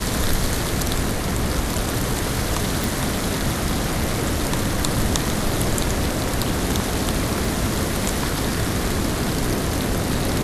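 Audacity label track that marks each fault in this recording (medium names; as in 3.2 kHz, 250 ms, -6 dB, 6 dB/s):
2.840000	2.840000	pop
7.450000	7.450000	dropout 2.2 ms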